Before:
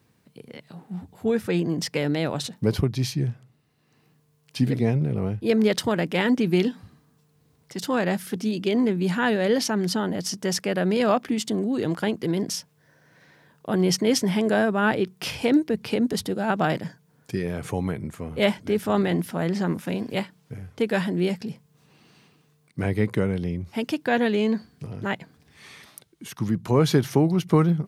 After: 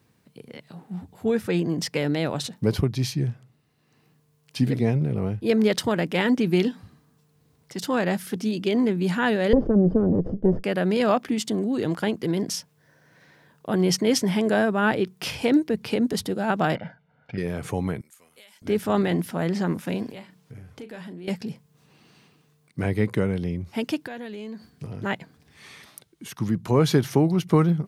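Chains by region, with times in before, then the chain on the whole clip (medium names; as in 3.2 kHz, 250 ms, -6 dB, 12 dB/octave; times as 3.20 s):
9.53–10.64 s: comb filter that takes the minimum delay 0.61 ms + resonant low-pass 490 Hz, resonance Q 2.6 + bass shelf 200 Hz +10.5 dB
16.75–17.38 s: low-pass 3 kHz 24 dB/octave + peaking EQ 140 Hz -7.5 dB 1.8 oct + comb 1.4 ms, depth 85%
18.01–18.62 s: differentiator + compression 10:1, threshold -46 dBFS
20.10–21.28 s: compression 4:1, threshold -39 dBFS + doubling 38 ms -11 dB
24.06–24.70 s: treble shelf 7 kHz +7.5 dB + compression 4:1, threshold -36 dBFS
whole clip: none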